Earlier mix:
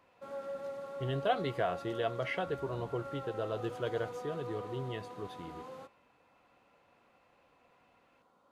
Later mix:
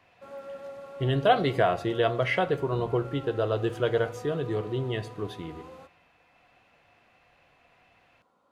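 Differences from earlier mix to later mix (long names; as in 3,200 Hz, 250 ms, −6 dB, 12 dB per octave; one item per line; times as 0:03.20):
speech +6.5 dB
reverb: on, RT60 0.50 s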